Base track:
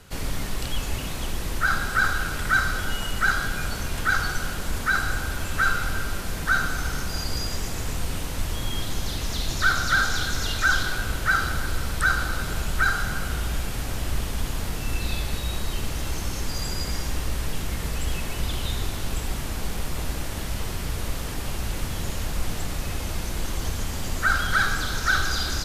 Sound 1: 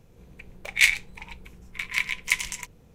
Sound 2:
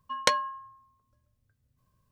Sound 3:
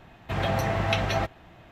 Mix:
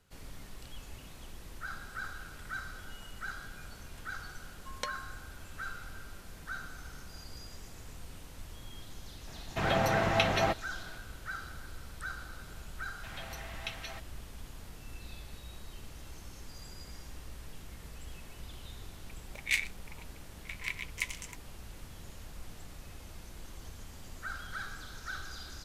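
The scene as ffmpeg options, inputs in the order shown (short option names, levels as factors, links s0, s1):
-filter_complex "[3:a]asplit=2[s0][s1];[0:a]volume=0.112[s2];[s0]equalizer=f=77:t=o:w=0.77:g=-14.5[s3];[s1]tiltshelf=f=1100:g=-9.5[s4];[2:a]atrim=end=2.11,asetpts=PTS-STARTPTS,volume=0.188,afade=t=in:d=0.004:c=hsin,afade=t=out:st=2.106:d=0.004:c=hsin,adelay=4560[s5];[s3]atrim=end=1.71,asetpts=PTS-STARTPTS,volume=0.891,afade=t=in:d=0.004:c=hsin,afade=t=out:st=1.706:d=0.004:c=hsin,adelay=9270[s6];[s4]atrim=end=1.71,asetpts=PTS-STARTPTS,volume=0.126,afade=t=in:d=0.004:c=hsin,afade=t=out:st=1.706:d=0.004:c=hsin,adelay=12740[s7];[1:a]atrim=end=2.94,asetpts=PTS-STARTPTS,volume=0.266,afade=t=in:d=0.004:c=hsin,afade=t=out:st=2.936:d=0.004:c=hsin,adelay=18700[s8];[s2][s5][s6][s7][s8]amix=inputs=5:normalize=0"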